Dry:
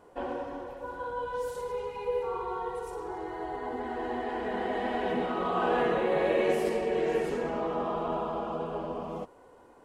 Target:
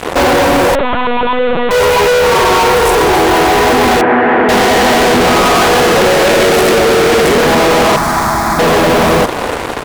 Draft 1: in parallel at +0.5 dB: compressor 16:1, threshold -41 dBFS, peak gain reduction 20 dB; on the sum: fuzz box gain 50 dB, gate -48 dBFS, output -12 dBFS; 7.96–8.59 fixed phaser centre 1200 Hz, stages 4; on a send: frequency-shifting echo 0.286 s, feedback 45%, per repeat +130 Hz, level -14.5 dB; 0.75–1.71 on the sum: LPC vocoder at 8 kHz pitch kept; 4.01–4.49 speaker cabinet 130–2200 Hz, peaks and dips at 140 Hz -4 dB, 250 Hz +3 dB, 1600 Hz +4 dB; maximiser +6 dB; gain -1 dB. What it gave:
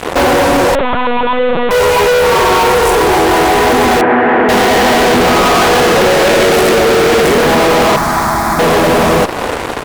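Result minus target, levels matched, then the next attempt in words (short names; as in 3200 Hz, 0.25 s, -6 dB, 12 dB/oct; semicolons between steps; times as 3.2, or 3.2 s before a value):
compressor: peak gain reduction +10.5 dB
in parallel at +0.5 dB: compressor 16:1, threshold -30 dBFS, peak gain reduction 9.5 dB; on the sum: fuzz box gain 50 dB, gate -48 dBFS, output -12 dBFS; 7.96–8.59 fixed phaser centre 1200 Hz, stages 4; on a send: frequency-shifting echo 0.286 s, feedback 45%, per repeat +130 Hz, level -14.5 dB; 0.75–1.71 on the sum: LPC vocoder at 8 kHz pitch kept; 4.01–4.49 speaker cabinet 130–2200 Hz, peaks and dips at 140 Hz -4 dB, 250 Hz +3 dB, 1600 Hz +4 dB; maximiser +6 dB; gain -1 dB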